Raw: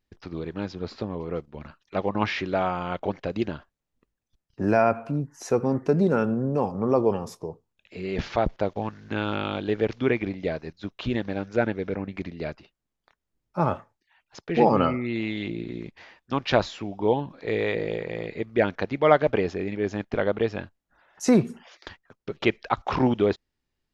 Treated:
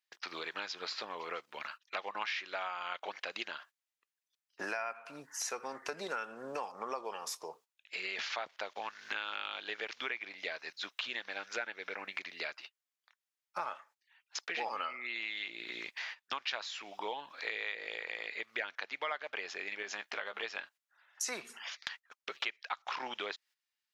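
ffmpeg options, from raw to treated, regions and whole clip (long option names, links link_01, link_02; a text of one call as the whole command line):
ffmpeg -i in.wav -filter_complex "[0:a]asettb=1/sr,asplit=3[link_01][link_02][link_03];[link_01]atrim=end=19.824[link_04];[link_02]atrim=start=19.82:end=20.43,asetpts=PTS-STARTPTS,afade=type=in:duration=0.004:curve=qsin,afade=type=out:start_time=0.606:duration=0.004:curve=qsin,highpass=46,acompressor=threshold=-27dB:ratio=2.5:attack=3.2:release=140:knee=1:detection=peak,asplit=2[link_05][link_06];[link_06]adelay=15,volume=-9dB[link_07];[link_05][link_07]amix=inputs=2:normalize=0,atrim=end_sample=26901[link_08];[link_03]atrim=start=20.426[link_09];[link_04][link_08]acrossfade=duration=0.004:curve1=hsin:curve2=qsin[link_10];[link_10][link_09]acrossfade=duration=0.004:curve1=qsin:curve2=hsin,agate=range=-14dB:threshold=-49dB:ratio=16:detection=peak,highpass=1500,acompressor=threshold=-49dB:ratio=5,volume=12dB" out.wav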